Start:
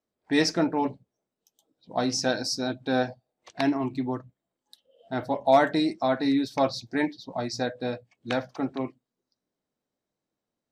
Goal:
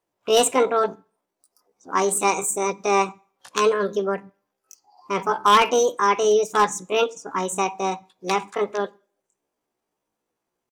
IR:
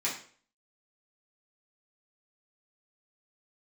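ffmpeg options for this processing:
-filter_complex "[0:a]aeval=exprs='0.211*(abs(mod(val(0)/0.211+3,4)-2)-1)':c=same,asetrate=68011,aresample=44100,atempo=0.64842,asplit=2[a][b];[1:a]atrim=start_sample=2205,adelay=24[c];[b][c]afir=irnorm=-1:irlink=0,volume=-29dB[d];[a][d]amix=inputs=2:normalize=0,volume=5.5dB"

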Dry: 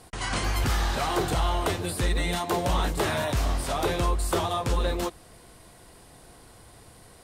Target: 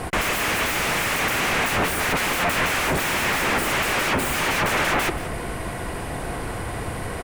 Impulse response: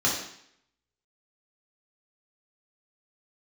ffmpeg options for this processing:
-filter_complex "[0:a]aeval=exprs='0.158*sin(PI/2*10*val(0)/0.158)':c=same,highshelf=f=3.1k:t=q:w=1.5:g=-8,asplit=2[a][b];[b]adelay=180.8,volume=-13dB,highshelf=f=4k:g=-4.07[c];[a][c]amix=inputs=2:normalize=0,volume=-1.5dB"

